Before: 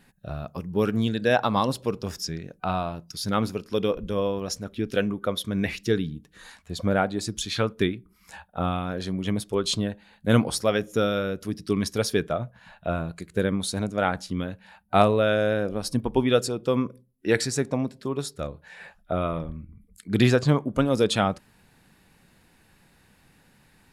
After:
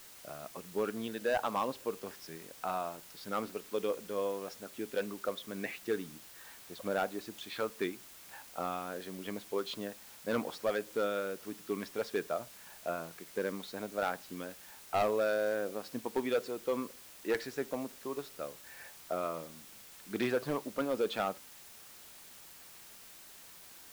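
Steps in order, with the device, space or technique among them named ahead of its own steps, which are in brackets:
aircraft radio (band-pass filter 340–2,600 Hz; hard clipping −17.5 dBFS, distortion −13 dB; white noise bed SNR 16 dB)
level −7 dB

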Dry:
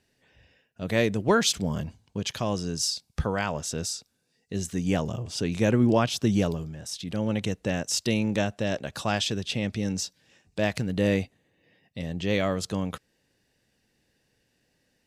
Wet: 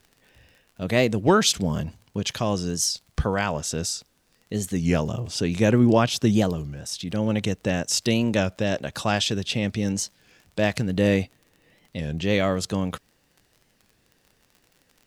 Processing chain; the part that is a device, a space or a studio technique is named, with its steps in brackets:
warped LP (wow of a warped record 33 1/3 rpm, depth 160 cents; surface crackle 35 per second −44 dBFS; pink noise bed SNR 44 dB)
level +3.5 dB

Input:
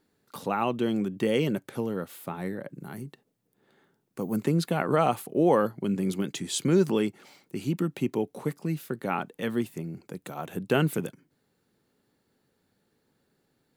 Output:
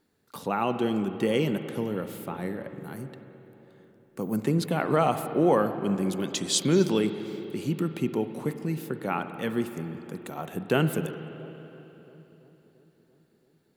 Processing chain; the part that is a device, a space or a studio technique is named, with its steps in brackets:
0:06.23–0:06.99: parametric band 5,100 Hz +8.5 dB 1.3 octaves
dub delay into a spring reverb (feedback echo with a low-pass in the loop 339 ms, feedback 72%, low-pass 1,300 Hz, level −22 dB; spring reverb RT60 3.3 s, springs 45/56 ms, chirp 55 ms, DRR 9 dB)

